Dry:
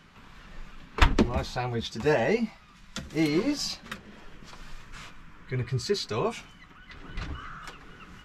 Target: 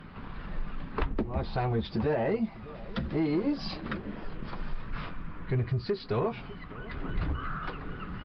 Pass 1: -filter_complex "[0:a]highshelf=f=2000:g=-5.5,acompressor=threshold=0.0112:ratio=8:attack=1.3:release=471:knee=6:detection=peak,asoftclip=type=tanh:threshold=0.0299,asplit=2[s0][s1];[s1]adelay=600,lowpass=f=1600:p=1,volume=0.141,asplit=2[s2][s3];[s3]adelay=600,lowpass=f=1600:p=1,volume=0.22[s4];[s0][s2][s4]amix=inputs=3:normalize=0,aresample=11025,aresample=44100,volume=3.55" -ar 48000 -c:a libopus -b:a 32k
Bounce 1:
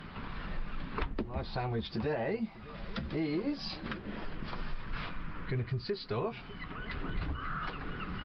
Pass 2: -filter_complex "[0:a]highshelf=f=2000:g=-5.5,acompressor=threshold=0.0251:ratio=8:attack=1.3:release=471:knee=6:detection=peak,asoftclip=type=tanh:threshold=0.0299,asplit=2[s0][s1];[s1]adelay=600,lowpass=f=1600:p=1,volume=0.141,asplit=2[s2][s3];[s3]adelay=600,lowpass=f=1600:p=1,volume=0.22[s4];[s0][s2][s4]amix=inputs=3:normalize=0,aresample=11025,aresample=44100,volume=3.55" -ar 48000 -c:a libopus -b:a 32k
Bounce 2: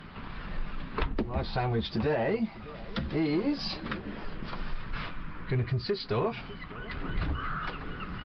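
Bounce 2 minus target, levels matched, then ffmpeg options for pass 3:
4 kHz band +5.0 dB
-filter_complex "[0:a]highshelf=f=2000:g=-13.5,acompressor=threshold=0.0251:ratio=8:attack=1.3:release=471:knee=6:detection=peak,asoftclip=type=tanh:threshold=0.0299,asplit=2[s0][s1];[s1]adelay=600,lowpass=f=1600:p=1,volume=0.141,asplit=2[s2][s3];[s3]adelay=600,lowpass=f=1600:p=1,volume=0.22[s4];[s0][s2][s4]amix=inputs=3:normalize=0,aresample=11025,aresample=44100,volume=3.55" -ar 48000 -c:a libopus -b:a 32k

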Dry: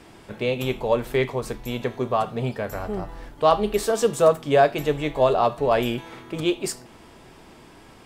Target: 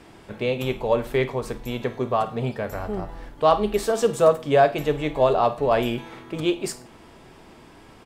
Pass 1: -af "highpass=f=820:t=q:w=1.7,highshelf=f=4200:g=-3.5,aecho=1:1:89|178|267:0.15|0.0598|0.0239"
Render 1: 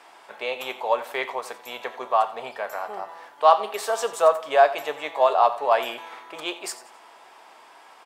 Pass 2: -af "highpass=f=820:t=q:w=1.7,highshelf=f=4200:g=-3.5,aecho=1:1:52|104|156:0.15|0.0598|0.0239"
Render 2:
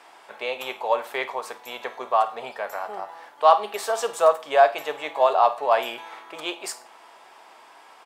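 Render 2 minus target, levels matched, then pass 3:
1 kHz band +4.0 dB
-af "highshelf=f=4200:g=-3.5,aecho=1:1:52|104|156:0.15|0.0598|0.0239"

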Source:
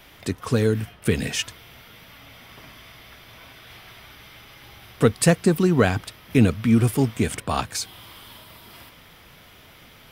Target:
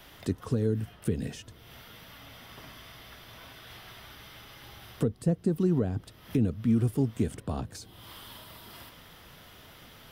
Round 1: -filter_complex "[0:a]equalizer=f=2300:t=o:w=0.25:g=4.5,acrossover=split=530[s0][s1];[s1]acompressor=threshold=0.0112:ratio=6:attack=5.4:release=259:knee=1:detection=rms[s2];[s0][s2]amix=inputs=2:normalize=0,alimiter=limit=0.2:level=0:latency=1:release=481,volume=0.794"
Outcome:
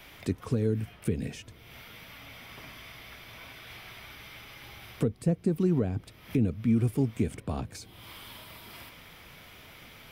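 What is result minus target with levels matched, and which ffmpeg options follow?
2 kHz band +3.5 dB
-filter_complex "[0:a]equalizer=f=2300:t=o:w=0.25:g=-6.5,acrossover=split=530[s0][s1];[s1]acompressor=threshold=0.0112:ratio=6:attack=5.4:release=259:knee=1:detection=rms[s2];[s0][s2]amix=inputs=2:normalize=0,alimiter=limit=0.2:level=0:latency=1:release=481,volume=0.794"

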